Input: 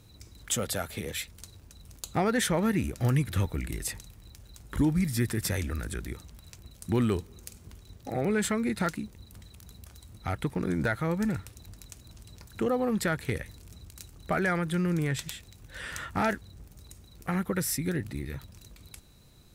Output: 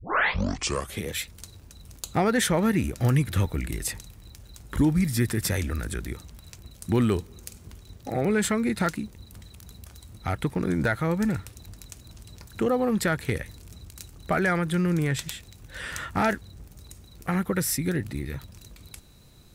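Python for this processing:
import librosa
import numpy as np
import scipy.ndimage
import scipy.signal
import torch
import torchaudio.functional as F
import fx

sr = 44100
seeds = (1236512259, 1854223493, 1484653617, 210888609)

y = fx.tape_start_head(x, sr, length_s=1.01)
y = y * librosa.db_to_amplitude(3.5)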